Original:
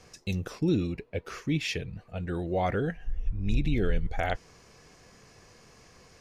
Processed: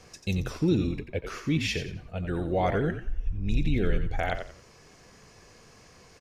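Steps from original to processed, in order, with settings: on a send: frequency-shifting echo 89 ms, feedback 30%, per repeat -51 Hz, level -8.5 dB; on the sum: vocal rider 2 s

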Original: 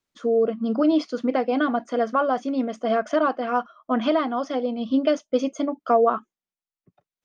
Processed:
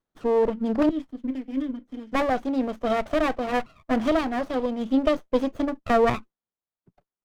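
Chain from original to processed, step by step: 0.89–2.12 vowel filter i; downsampling 32000 Hz; running maximum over 17 samples

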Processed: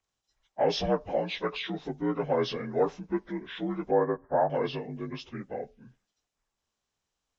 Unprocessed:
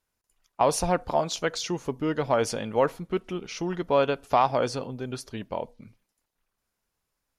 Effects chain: inharmonic rescaling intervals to 83%; 3.91–4.5 steep low-pass 1700 Hz 72 dB/oct; gain -1.5 dB

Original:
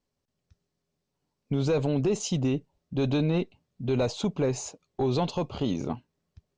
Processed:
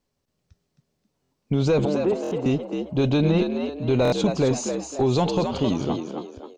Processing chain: 1.85–2.46 three-band isolator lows -15 dB, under 280 Hz, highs -21 dB, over 2300 Hz; frequency-shifting echo 0.266 s, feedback 37%, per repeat +65 Hz, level -6.5 dB; stuck buffer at 1.22/2.22/4.03, samples 1024, times 3; gain +5 dB

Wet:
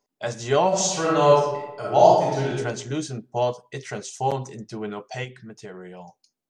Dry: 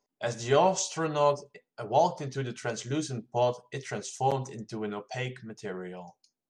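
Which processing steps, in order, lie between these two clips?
0.68–2.51 reverb throw, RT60 1 s, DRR -5 dB; 5.24–6 compressor 4:1, threshold -39 dBFS, peak gain reduction 7.5 dB; gain +3 dB

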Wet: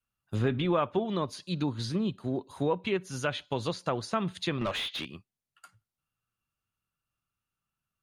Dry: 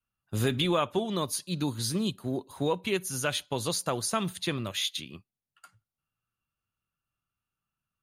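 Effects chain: treble ducked by the level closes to 2000 Hz, closed at -24.5 dBFS; 4.61–5.06 overdrive pedal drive 23 dB, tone 1500 Hz, clips at -20 dBFS

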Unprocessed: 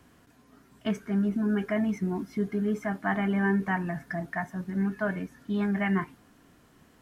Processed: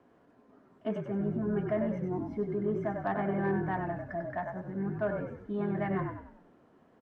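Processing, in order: band-pass 520 Hz, Q 1.1; frequency-shifting echo 96 ms, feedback 41%, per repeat -41 Hz, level -5 dB; added harmonics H 5 -28 dB, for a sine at -18.5 dBFS

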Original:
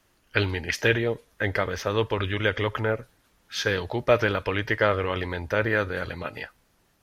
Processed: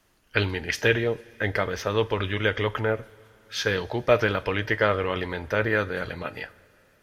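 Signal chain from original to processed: two-slope reverb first 0.22 s, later 3.2 s, from -19 dB, DRR 14 dB

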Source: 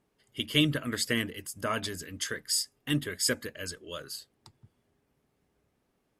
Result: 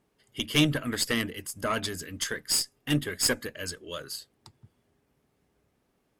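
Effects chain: added harmonics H 4 -13 dB, 6 -34 dB, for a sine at -9 dBFS; gain +2.5 dB

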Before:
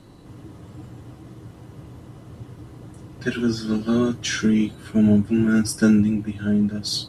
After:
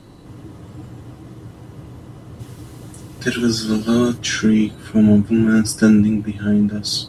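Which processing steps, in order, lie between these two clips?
2.39–4.17 high shelf 3200 Hz -> 4800 Hz +11.5 dB; gain +4 dB

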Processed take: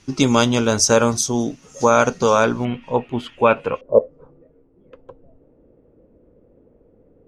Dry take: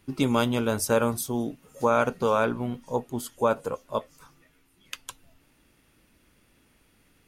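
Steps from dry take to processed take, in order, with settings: synth low-pass 6100 Hz, resonance Q 4.7, from 2.65 s 2600 Hz, from 3.81 s 500 Hz; gain +7.5 dB

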